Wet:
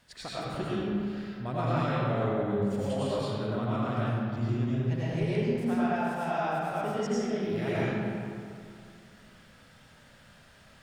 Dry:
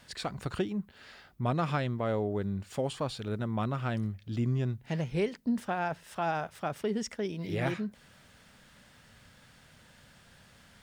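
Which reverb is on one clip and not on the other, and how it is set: algorithmic reverb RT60 2.4 s, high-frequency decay 0.55×, pre-delay 60 ms, DRR -9 dB; trim -7 dB

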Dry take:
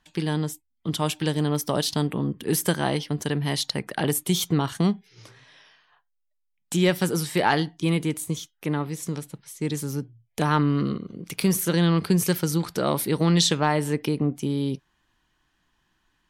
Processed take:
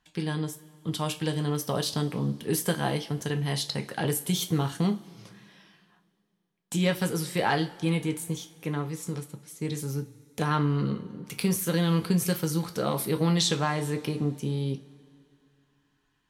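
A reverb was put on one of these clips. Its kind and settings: two-slope reverb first 0.26 s, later 2.6 s, from -22 dB, DRR 4.5 dB; trim -5 dB

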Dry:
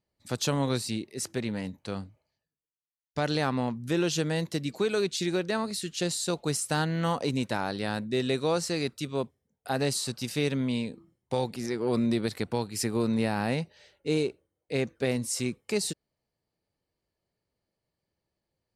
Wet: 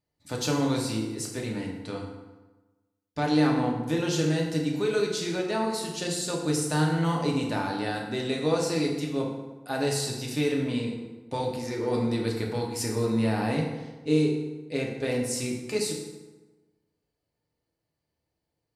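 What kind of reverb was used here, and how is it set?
FDN reverb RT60 1.2 s, low-frequency decay 1.05×, high-frequency decay 0.65×, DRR -1.5 dB; trim -3 dB

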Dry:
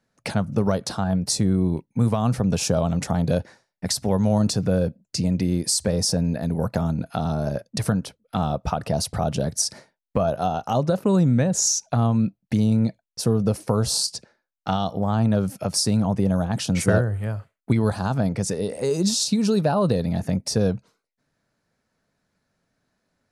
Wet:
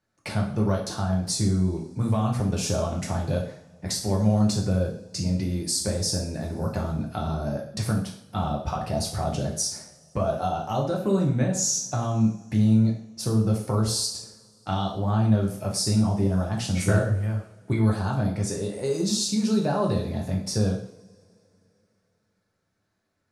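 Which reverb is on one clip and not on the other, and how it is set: two-slope reverb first 0.54 s, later 3.1 s, from -27 dB, DRR -2 dB; trim -7 dB

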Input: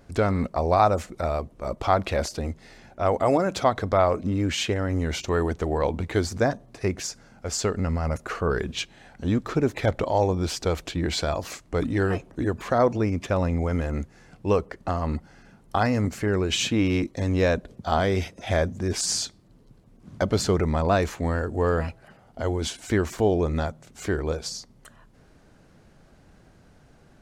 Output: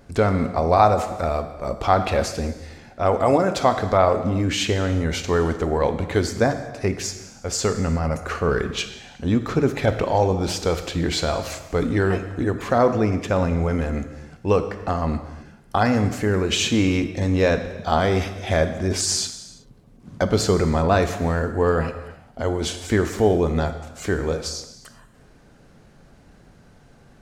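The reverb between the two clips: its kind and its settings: gated-style reverb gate 410 ms falling, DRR 7.5 dB; trim +3 dB

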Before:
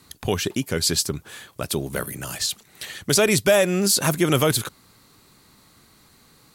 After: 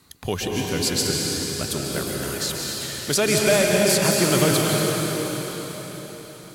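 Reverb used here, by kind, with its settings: plate-style reverb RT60 5 s, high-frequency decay 0.95×, pre-delay 120 ms, DRR -2.5 dB; trim -3 dB

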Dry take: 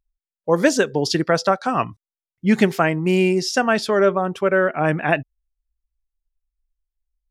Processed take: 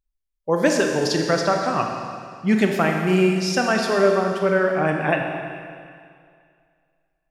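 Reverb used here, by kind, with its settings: Schroeder reverb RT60 2.2 s, combs from 29 ms, DRR 2 dB; trim -3 dB

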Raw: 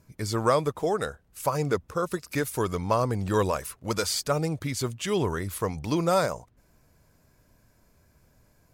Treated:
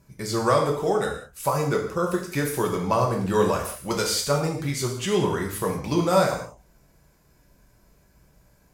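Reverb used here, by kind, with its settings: gated-style reverb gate 230 ms falling, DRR -0.5 dB

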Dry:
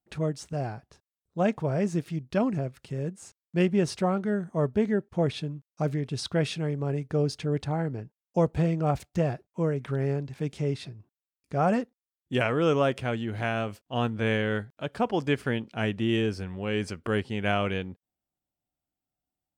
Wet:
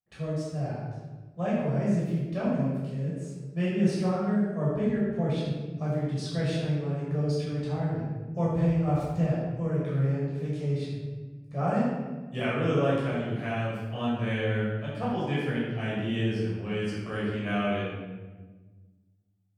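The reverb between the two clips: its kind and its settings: simulated room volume 960 m³, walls mixed, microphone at 6 m; trim -14 dB

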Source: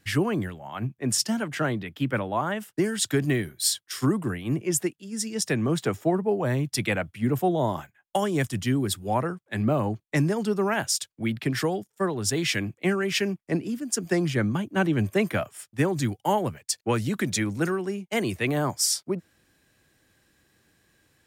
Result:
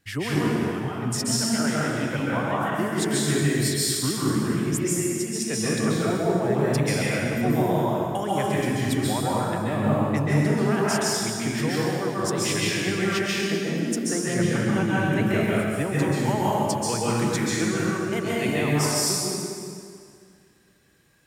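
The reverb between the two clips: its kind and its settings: plate-style reverb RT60 2.2 s, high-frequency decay 0.85×, pre-delay 120 ms, DRR -7.5 dB; trim -5.5 dB

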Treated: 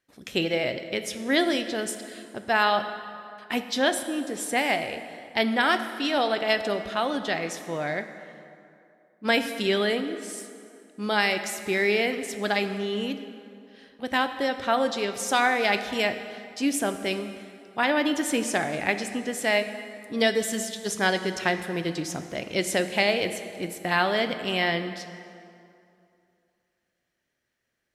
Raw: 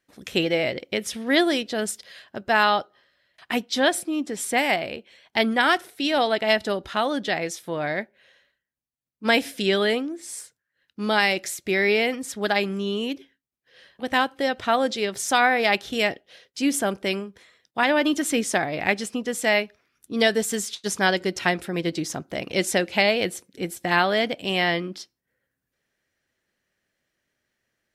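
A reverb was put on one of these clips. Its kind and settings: plate-style reverb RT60 2.6 s, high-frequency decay 0.65×, DRR 8.5 dB; trim -3 dB

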